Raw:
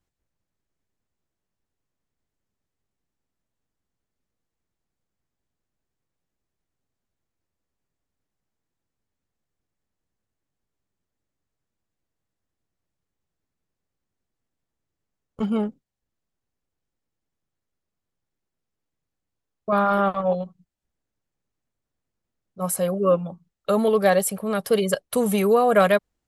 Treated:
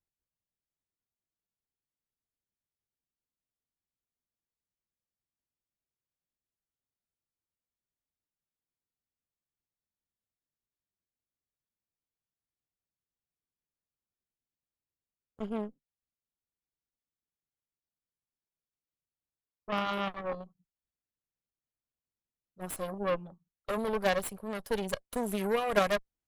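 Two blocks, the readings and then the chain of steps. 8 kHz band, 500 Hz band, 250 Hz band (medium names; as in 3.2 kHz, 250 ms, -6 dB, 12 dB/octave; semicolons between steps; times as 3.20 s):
-13.0 dB, -12.0 dB, -12.0 dB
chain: Chebyshev shaper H 3 -12 dB, 5 -36 dB, 8 -24 dB, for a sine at -5.5 dBFS; short-mantissa float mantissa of 8-bit; trim -5.5 dB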